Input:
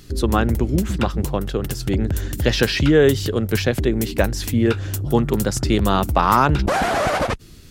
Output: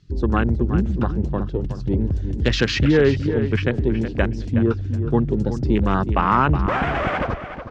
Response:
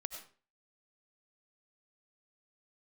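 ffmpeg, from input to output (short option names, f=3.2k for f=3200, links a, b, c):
-filter_complex "[0:a]lowpass=f=6k:w=0.5412,lowpass=f=6k:w=1.3066,afwtdn=0.0501,equalizer=f=650:t=o:w=1.1:g=-5.5,asplit=2[a][b];[b]adelay=369,lowpass=f=4.5k:p=1,volume=-10dB,asplit=2[c][d];[d]adelay=369,lowpass=f=4.5k:p=1,volume=0.19,asplit=2[e][f];[f]adelay=369,lowpass=f=4.5k:p=1,volume=0.19[g];[a][c][e][g]amix=inputs=4:normalize=0"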